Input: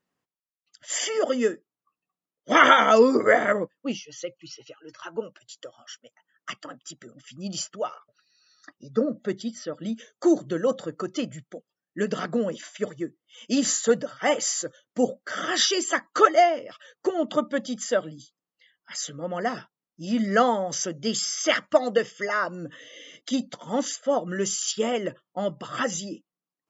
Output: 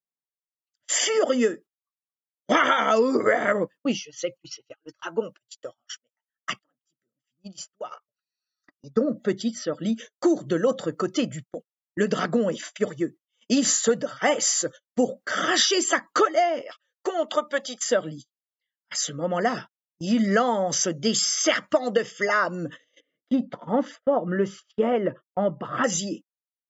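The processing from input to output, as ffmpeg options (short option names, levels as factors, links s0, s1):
-filter_complex "[0:a]asettb=1/sr,asplit=3[s0][s1][s2];[s0]atrim=end=16.614[s3];[s1]atrim=start=16.61:end=17.87,asetpts=PTS-STARTPTS,afade=t=in:d=0.004:c=qsin,afade=t=out:st=1.256:d=0.004:c=qsin,highpass=590[s4];[s2]atrim=start=17.866[s5];[s3][s4]acrossfade=d=0.004:c1=hsin:c2=qsin[s6];[s6][s5]acrossfade=d=0.004:c1=qsin:c2=hsin,asettb=1/sr,asplit=3[s7][s8][s9];[s7]atrim=end=23.004[s10];[s8]atrim=start=23:end=25.84,asetpts=PTS-STARTPTS,afade=t=in:d=0.004:c=qsin,afade=t=out:st=2.836:d=0.004:c=qsin,lowpass=1600[s11];[s9]atrim=start=25.836[s12];[s10][s11]acrossfade=d=0.004:c1=hsin:c2=qsin[s13];[s13][s12]acrossfade=d=0.004:c1=qsin:c2=hsin,asplit=3[s14][s15][s16];[s14]atrim=end=6.592[s17];[s15]atrim=start=6.588:end=7.912,asetpts=PTS-STARTPTS,volume=0.282[s18];[s16]atrim=start=7.908[s19];[s17][s18]acrossfade=d=0.004:c1=hsin:c2=hsin[s20];[s20][s19]acrossfade=d=0.004:c1=hsin:c2=hsin,agate=range=0.0316:threshold=0.00794:ratio=16:detection=peak,acompressor=threshold=0.0794:ratio=6,volume=1.78"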